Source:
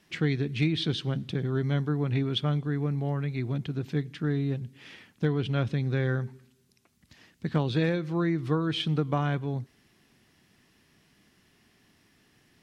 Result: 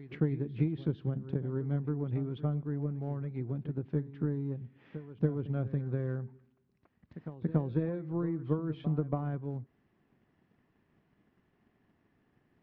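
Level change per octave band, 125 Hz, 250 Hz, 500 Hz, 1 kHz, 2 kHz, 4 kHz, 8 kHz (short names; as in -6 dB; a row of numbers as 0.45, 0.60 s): -5.0 dB, -5.0 dB, -5.5 dB, -10.0 dB, -16.5 dB, under -25 dB, n/a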